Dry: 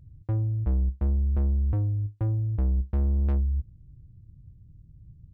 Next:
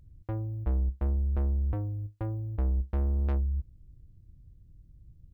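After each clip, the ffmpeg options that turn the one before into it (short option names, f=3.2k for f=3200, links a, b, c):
-af "equalizer=f=130:w=0.69:g=-10.5,volume=2dB"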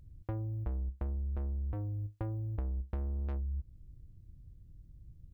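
-af "acompressor=threshold=-33dB:ratio=6"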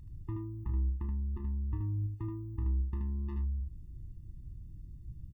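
-af "alimiter=level_in=12dB:limit=-24dB:level=0:latency=1:release=44,volume=-12dB,aecho=1:1:34|77:0.299|0.596,afftfilt=real='re*eq(mod(floor(b*sr/1024/420),2),0)':imag='im*eq(mod(floor(b*sr/1024/420),2),0)':win_size=1024:overlap=0.75,volume=6dB"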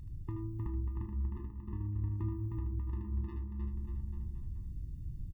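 -filter_complex "[0:a]acompressor=threshold=-40dB:ratio=3,asplit=2[a][b];[b]aecho=0:1:310|589|840.1|1066|1269:0.631|0.398|0.251|0.158|0.1[c];[a][c]amix=inputs=2:normalize=0,volume=3dB"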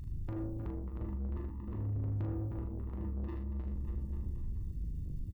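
-filter_complex "[0:a]asoftclip=type=tanh:threshold=-39.5dB,asplit=2[a][b];[b]adelay=40,volume=-5.5dB[c];[a][c]amix=inputs=2:normalize=0,volume=5dB"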